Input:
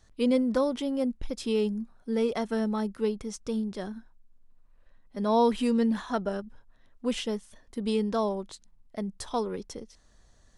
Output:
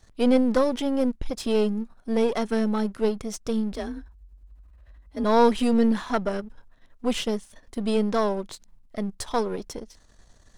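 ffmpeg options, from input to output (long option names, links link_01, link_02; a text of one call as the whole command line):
ffmpeg -i in.wav -filter_complex "[0:a]aeval=exprs='if(lt(val(0),0),0.447*val(0),val(0))':channel_layout=same,asplit=3[link_01][link_02][link_03];[link_01]afade=type=out:start_time=3.72:duration=0.02[link_04];[link_02]afreqshift=37,afade=type=in:start_time=3.72:duration=0.02,afade=type=out:start_time=5.23:duration=0.02[link_05];[link_03]afade=type=in:start_time=5.23:duration=0.02[link_06];[link_04][link_05][link_06]amix=inputs=3:normalize=0,volume=7dB" out.wav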